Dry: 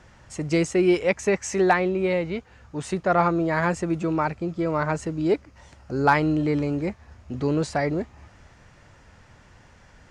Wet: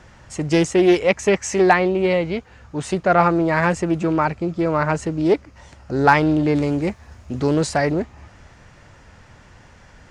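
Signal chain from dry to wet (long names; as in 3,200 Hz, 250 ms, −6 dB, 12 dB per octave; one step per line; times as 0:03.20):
0:06.55–0:07.92: high-shelf EQ 7,400 Hz +11.5 dB
highs frequency-modulated by the lows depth 0.22 ms
level +5 dB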